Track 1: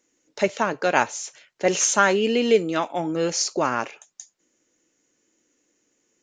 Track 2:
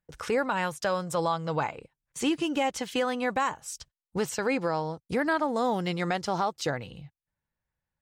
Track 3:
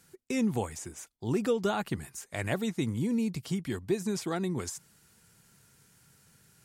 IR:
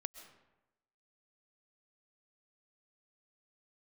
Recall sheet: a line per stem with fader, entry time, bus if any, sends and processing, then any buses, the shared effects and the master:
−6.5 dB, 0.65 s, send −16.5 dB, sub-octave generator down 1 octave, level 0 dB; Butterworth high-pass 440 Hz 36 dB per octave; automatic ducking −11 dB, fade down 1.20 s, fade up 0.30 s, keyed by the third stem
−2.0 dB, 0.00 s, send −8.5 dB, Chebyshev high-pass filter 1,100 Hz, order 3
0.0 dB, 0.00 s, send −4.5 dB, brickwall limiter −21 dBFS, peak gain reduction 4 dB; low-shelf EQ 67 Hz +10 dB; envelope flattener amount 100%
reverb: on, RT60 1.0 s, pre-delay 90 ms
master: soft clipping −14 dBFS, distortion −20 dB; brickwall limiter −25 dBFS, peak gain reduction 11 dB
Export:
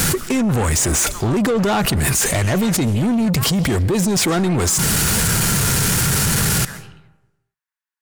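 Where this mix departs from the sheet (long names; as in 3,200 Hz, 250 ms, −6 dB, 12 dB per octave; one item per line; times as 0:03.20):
stem 3 0.0 dB → +9.0 dB
master: missing brickwall limiter −25 dBFS, peak gain reduction 11 dB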